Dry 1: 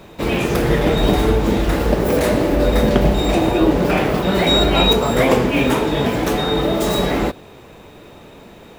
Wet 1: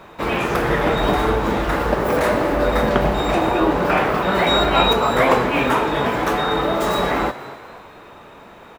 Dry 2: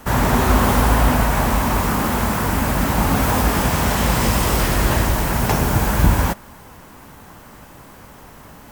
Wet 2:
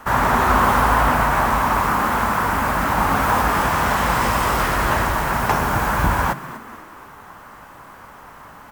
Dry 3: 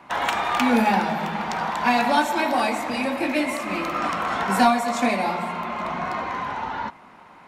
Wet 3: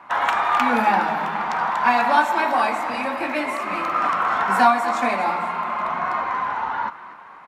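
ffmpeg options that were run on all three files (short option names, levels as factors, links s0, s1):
-filter_complex "[0:a]equalizer=f=1200:t=o:w=1.9:g=12.5,asplit=2[s0][s1];[s1]asplit=4[s2][s3][s4][s5];[s2]adelay=243,afreqshift=86,volume=0.168[s6];[s3]adelay=486,afreqshift=172,volume=0.0741[s7];[s4]adelay=729,afreqshift=258,volume=0.0324[s8];[s5]adelay=972,afreqshift=344,volume=0.0143[s9];[s6][s7][s8][s9]amix=inputs=4:normalize=0[s10];[s0][s10]amix=inputs=2:normalize=0,volume=0.473"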